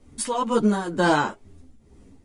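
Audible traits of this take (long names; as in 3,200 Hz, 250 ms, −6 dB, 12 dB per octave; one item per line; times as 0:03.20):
tremolo triangle 2.1 Hz, depth 70%
a shimmering, thickened sound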